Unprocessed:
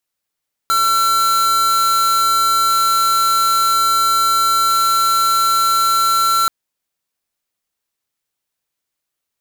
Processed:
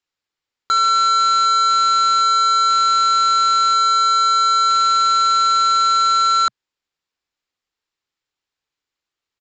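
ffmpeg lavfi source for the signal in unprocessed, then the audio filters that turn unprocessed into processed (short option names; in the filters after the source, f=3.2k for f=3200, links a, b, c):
-f lavfi -i "aevalsrc='0.188*(2*lt(mod(1350*t,1),0.5)-1)':d=5.78:s=44100"
-af "equalizer=f=125:t=o:w=0.33:g=-4,equalizer=f=200:t=o:w=0.33:g=-7,equalizer=f=630:t=o:w=0.33:g=-6,equalizer=f=6.3k:t=o:w=0.33:g=-7,aresample=16000,aresample=44100"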